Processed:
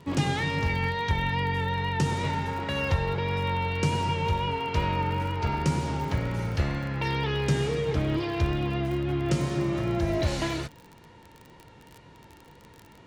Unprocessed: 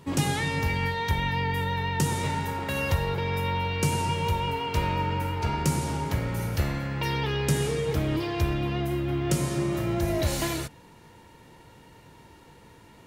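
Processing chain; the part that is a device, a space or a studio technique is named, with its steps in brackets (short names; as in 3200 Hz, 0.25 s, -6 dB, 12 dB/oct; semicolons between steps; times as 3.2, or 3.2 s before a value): lo-fi chain (LPF 5200 Hz 12 dB/oct; wow and flutter 26 cents; crackle 38/s -35 dBFS)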